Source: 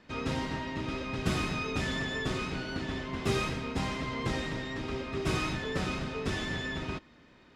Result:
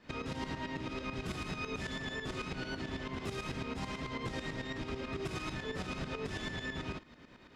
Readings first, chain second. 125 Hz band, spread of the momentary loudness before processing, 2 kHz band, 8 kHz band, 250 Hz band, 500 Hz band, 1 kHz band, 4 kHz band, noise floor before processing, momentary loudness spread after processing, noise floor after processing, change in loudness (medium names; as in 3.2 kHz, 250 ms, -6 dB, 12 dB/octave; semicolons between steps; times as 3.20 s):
-7.0 dB, 5 LU, -5.5 dB, -7.0 dB, -6.0 dB, -6.0 dB, -6.0 dB, -6.0 dB, -59 dBFS, 1 LU, -57 dBFS, -6.0 dB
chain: in parallel at +1 dB: compression, threshold -39 dBFS, peak gain reduction 14.5 dB; on the sum: peak limiter -25.5 dBFS, peak gain reduction 11 dB; tremolo saw up 9.1 Hz, depth 70%; trim -2 dB